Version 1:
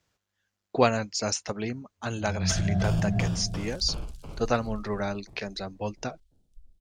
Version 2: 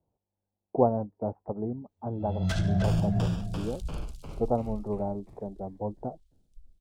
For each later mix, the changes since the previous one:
speech: add elliptic low-pass 870 Hz, stop band 80 dB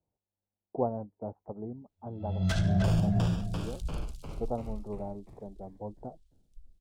speech -7.0 dB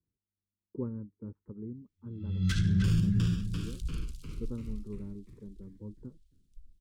master: add Butterworth band-stop 710 Hz, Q 0.66

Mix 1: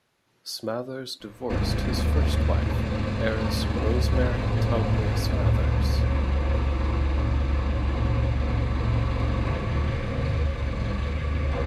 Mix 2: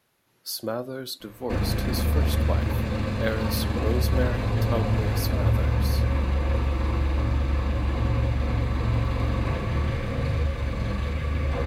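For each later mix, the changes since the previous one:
master: remove LPF 8300 Hz 12 dB/oct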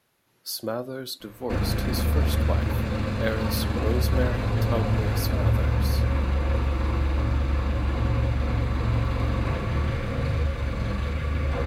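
background: remove notch 1400 Hz, Q 11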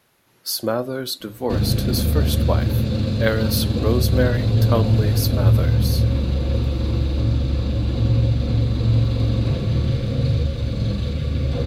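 speech +7.5 dB; background: add graphic EQ 125/250/500/1000/2000/4000 Hz +9/+4/+4/-8/-8/+11 dB

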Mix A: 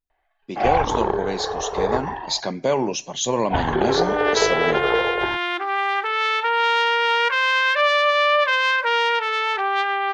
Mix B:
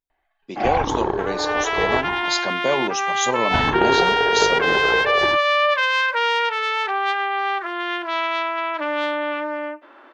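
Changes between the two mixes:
first sound: add resonant low shelf 370 Hz +6.5 dB, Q 1.5; second sound: entry -2.70 s; master: add low shelf 170 Hz -8.5 dB

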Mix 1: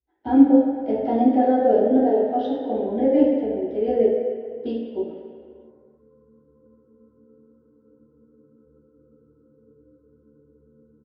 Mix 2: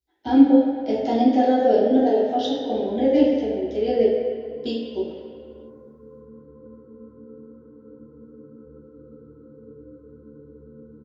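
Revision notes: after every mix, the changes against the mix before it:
speech: remove LPF 1600 Hz 12 dB/oct; background +11.0 dB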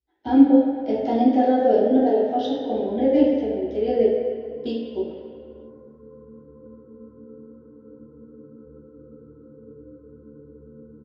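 master: add LPF 2200 Hz 6 dB/oct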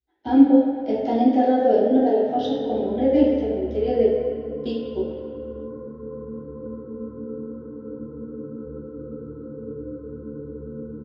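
background +10.5 dB

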